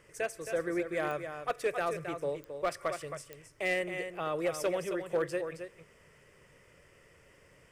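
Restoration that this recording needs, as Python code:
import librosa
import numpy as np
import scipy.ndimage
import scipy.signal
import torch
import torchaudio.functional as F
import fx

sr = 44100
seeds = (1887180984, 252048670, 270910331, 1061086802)

y = fx.fix_declip(x, sr, threshold_db=-23.5)
y = fx.fix_declick_ar(y, sr, threshold=10.0)
y = fx.fix_echo_inverse(y, sr, delay_ms=268, level_db=-8.5)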